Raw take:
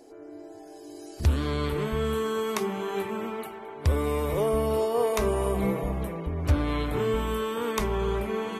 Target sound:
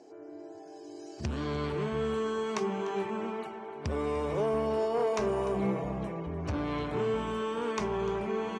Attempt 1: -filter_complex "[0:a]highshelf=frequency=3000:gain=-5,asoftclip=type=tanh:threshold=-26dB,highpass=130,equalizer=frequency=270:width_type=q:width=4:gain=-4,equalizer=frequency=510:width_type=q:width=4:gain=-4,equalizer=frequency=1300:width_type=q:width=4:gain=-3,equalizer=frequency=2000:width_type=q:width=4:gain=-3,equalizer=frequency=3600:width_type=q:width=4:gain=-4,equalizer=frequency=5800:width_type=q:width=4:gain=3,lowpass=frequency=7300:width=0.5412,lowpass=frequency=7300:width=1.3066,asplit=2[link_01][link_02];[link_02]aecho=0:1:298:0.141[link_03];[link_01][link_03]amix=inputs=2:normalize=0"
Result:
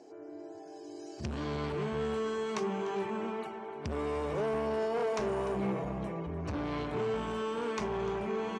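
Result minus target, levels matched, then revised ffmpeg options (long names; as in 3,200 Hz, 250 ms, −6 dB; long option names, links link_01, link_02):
soft clipping: distortion +6 dB
-filter_complex "[0:a]highshelf=frequency=3000:gain=-5,asoftclip=type=tanh:threshold=-19.5dB,highpass=130,equalizer=frequency=270:width_type=q:width=4:gain=-4,equalizer=frequency=510:width_type=q:width=4:gain=-4,equalizer=frequency=1300:width_type=q:width=4:gain=-3,equalizer=frequency=2000:width_type=q:width=4:gain=-3,equalizer=frequency=3600:width_type=q:width=4:gain=-4,equalizer=frequency=5800:width_type=q:width=4:gain=3,lowpass=frequency=7300:width=0.5412,lowpass=frequency=7300:width=1.3066,asplit=2[link_01][link_02];[link_02]aecho=0:1:298:0.141[link_03];[link_01][link_03]amix=inputs=2:normalize=0"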